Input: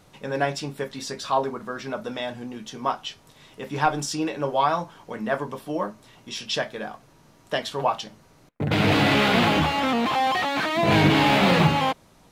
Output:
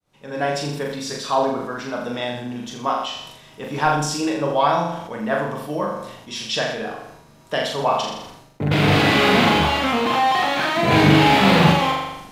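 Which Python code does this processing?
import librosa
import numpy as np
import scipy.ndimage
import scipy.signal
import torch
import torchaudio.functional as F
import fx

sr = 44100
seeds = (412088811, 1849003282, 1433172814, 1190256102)

y = fx.fade_in_head(x, sr, length_s=0.55)
y = fx.room_flutter(y, sr, wall_m=7.0, rt60_s=0.67)
y = fx.sustainer(y, sr, db_per_s=58.0)
y = y * 10.0 ** (1.5 / 20.0)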